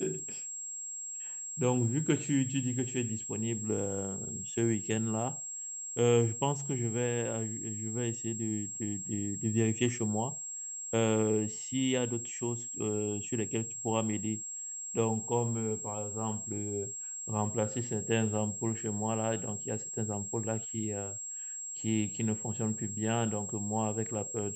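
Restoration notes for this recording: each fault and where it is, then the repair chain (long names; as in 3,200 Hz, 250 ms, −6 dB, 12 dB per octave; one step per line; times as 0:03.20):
whistle 7,600 Hz −38 dBFS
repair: notch filter 7,600 Hz, Q 30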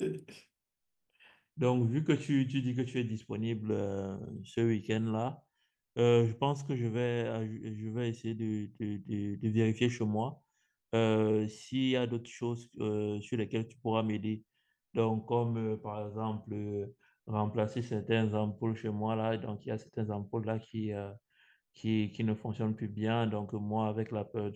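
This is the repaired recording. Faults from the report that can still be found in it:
none of them is left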